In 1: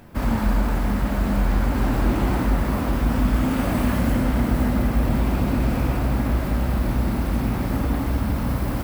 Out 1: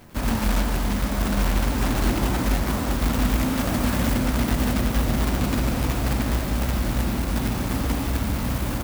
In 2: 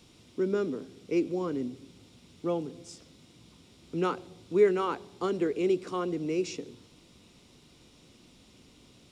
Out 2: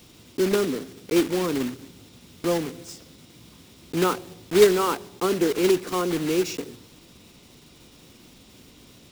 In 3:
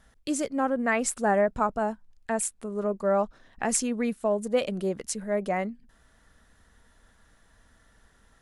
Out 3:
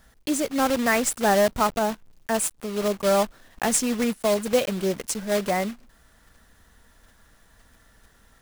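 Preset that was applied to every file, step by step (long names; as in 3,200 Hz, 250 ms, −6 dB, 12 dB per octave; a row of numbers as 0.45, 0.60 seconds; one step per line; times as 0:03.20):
one scale factor per block 3 bits
loudness normalisation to −24 LKFS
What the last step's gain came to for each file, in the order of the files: −2.0, +6.0, +3.5 decibels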